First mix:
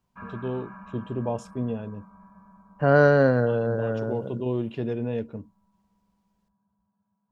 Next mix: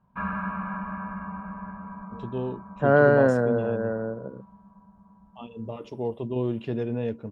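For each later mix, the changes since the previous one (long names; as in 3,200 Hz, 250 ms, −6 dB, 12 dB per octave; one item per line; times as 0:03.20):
first voice: entry +1.90 s
second voice: add band-pass filter 150–2,200 Hz
background +11.0 dB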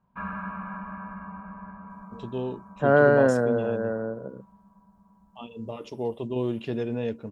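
first voice: add high-shelf EQ 3,600 Hz +9.5 dB
background −3.5 dB
master: add parametric band 110 Hz −3 dB 1.1 octaves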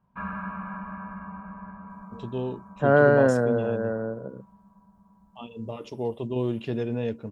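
master: add parametric band 110 Hz +3 dB 1.1 octaves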